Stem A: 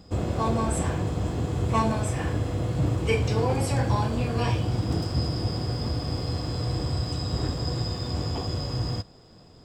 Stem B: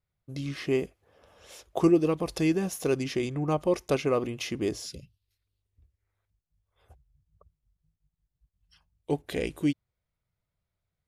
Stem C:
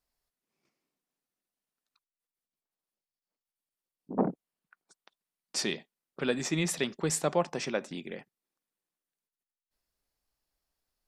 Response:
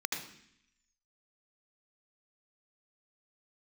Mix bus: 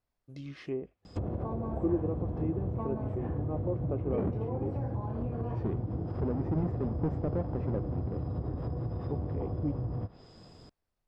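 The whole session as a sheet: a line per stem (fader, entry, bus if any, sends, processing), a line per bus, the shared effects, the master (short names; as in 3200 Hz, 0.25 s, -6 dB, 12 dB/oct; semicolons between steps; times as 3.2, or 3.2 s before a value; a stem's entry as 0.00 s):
-1.5 dB, 1.05 s, no send, compressor 12:1, threshold -28 dBFS, peak gain reduction 11 dB
-8.5 dB, 0.00 s, no send, high shelf 3700 Hz -7 dB
-3.5 dB, 0.00 s, no send, half-waves squared off; high shelf 2700 Hz -10 dB; limiter -21.5 dBFS, peak gain reduction 8 dB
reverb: off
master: treble ducked by the level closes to 740 Hz, closed at -29.5 dBFS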